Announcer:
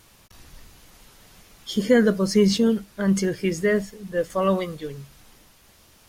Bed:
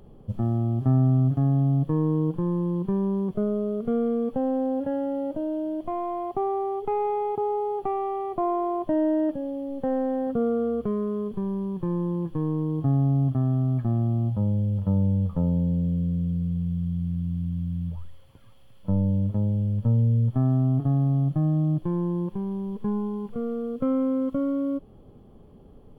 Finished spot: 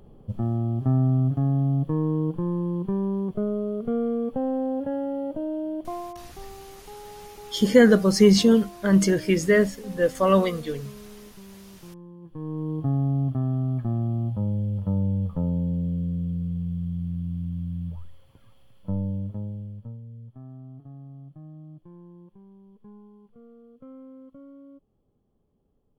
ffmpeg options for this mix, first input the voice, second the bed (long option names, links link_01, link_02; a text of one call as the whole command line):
ffmpeg -i stem1.wav -i stem2.wav -filter_complex "[0:a]adelay=5850,volume=2.5dB[link_01];[1:a]volume=14.5dB,afade=type=out:start_time=5.8:duration=0.46:silence=0.149624,afade=type=in:start_time=12.21:duration=0.5:silence=0.16788,afade=type=out:start_time=18.59:duration=1.41:silence=0.112202[link_02];[link_01][link_02]amix=inputs=2:normalize=0" out.wav